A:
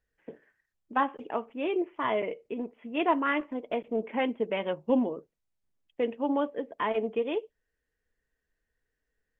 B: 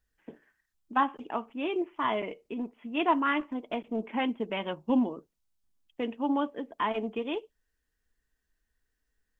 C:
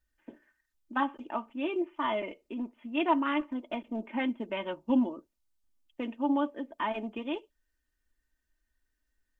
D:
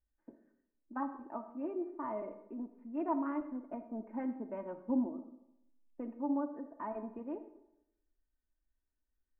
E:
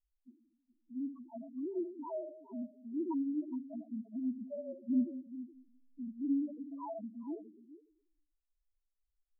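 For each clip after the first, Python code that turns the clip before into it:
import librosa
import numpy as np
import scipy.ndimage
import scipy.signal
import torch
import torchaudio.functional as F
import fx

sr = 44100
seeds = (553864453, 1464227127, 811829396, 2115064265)

y1 = fx.graphic_eq(x, sr, hz=(125, 500, 2000), db=(-7, -11, -6))
y1 = y1 * librosa.db_to_amplitude(5.0)
y2 = y1 + 0.57 * np.pad(y1, (int(3.3 * sr / 1000.0), 0))[:len(y1)]
y2 = y2 * librosa.db_to_amplitude(-3.0)
y3 = scipy.ndimage.gaussian_filter1d(y2, 6.4, mode='constant')
y3 = fx.rev_freeverb(y3, sr, rt60_s=0.84, hf_ratio=0.6, predelay_ms=15, drr_db=10.0)
y3 = y3 * librosa.db_to_amplitude(-6.0)
y4 = fx.tracing_dist(y3, sr, depth_ms=0.14)
y4 = fx.spec_topn(y4, sr, count=1)
y4 = y4 + 10.0 ** (-15.0 / 20.0) * np.pad(y4, (int(418 * sr / 1000.0), 0))[:len(y4)]
y4 = y4 * librosa.db_to_amplitude(6.0)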